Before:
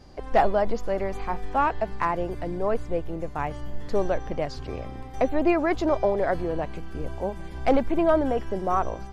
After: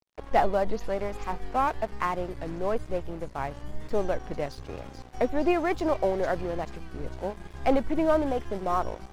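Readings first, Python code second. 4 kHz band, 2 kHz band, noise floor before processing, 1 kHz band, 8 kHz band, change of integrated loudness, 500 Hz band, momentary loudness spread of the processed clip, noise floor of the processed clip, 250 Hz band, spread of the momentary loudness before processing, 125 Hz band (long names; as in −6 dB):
−1.0 dB, −2.5 dB, −38 dBFS, −2.5 dB, can't be measured, −2.5 dB, −3.0 dB, 12 LU, −47 dBFS, −3.0 dB, 11 LU, −3.5 dB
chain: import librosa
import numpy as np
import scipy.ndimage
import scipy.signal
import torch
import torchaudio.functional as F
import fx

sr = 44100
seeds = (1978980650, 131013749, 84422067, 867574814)

y = fx.echo_wet_highpass(x, sr, ms=445, feedback_pct=62, hz=5300.0, wet_db=-3.5)
y = np.sign(y) * np.maximum(np.abs(y) - 10.0 ** (-40.5 / 20.0), 0.0)
y = fx.vibrato(y, sr, rate_hz=1.1, depth_cents=88.0)
y = y * 10.0 ** (-2.0 / 20.0)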